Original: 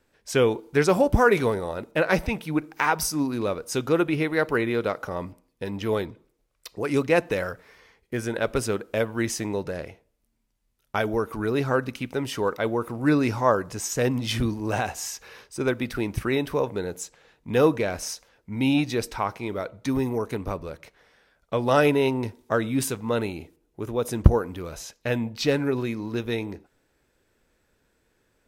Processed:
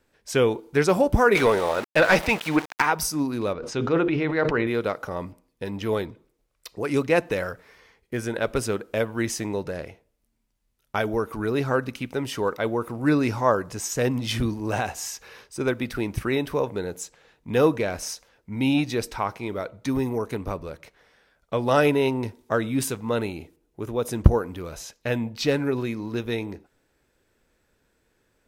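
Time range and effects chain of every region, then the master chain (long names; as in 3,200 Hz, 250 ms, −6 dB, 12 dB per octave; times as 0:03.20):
0:01.35–0:02.82: centre clipping without the shift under −39 dBFS + mid-hump overdrive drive 17 dB, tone 5,200 Hz, clips at −7.5 dBFS
0:03.53–0:04.67: high-frequency loss of the air 150 metres + mains-hum notches 50/100/150/200/250/300/350/400/450/500 Hz + level that may fall only so fast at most 29 dB per second
whole clip: no processing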